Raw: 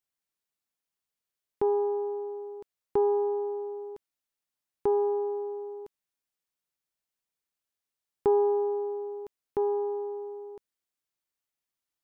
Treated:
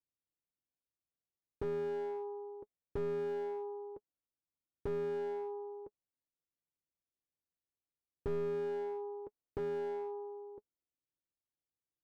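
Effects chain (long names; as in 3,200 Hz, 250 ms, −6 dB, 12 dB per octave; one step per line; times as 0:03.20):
low-pass that shuts in the quiet parts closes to 450 Hz, open at −24 dBFS
notch comb filter 210 Hz
slew-rate limiting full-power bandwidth 7.9 Hz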